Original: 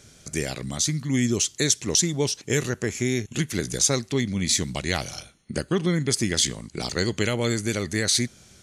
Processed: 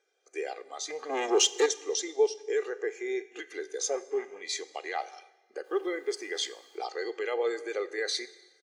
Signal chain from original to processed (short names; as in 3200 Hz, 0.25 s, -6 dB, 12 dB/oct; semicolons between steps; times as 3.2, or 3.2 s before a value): 3.89–4.41 CVSD 16 kbps; LPF 1400 Hz 6 dB/oct; 0.9–1.66 sample leveller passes 3; limiter -17.5 dBFS, peak gain reduction 6 dB; 5.63–6.77 added noise pink -52 dBFS; HPF 490 Hz 24 dB/oct; comb 2.5 ms, depth 52%; Schroeder reverb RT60 1.8 s, combs from 30 ms, DRR 10.5 dB; spectral expander 1.5:1; gain +3.5 dB